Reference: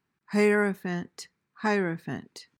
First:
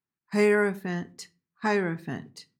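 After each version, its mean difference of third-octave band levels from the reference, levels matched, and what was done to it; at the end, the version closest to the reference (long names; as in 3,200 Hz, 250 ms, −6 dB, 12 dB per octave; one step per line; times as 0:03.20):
1.5 dB: noise gate −45 dBFS, range −15 dB
rectangular room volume 180 cubic metres, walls furnished, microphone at 0.35 metres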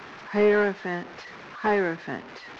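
6.5 dB: linear delta modulator 32 kbit/s, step −39 dBFS
three-way crossover with the lows and the highs turned down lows −13 dB, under 330 Hz, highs −13 dB, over 2,600 Hz
level +6.5 dB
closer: first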